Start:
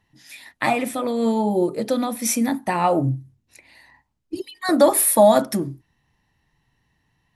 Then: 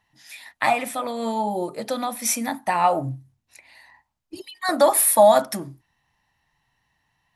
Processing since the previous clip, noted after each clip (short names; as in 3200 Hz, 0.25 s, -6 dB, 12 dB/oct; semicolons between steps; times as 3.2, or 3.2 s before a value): resonant low shelf 540 Hz -7 dB, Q 1.5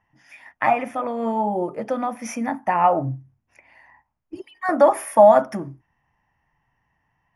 running mean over 11 samples; gain +2.5 dB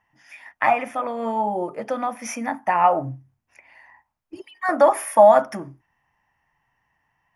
low shelf 490 Hz -8 dB; gain +2.5 dB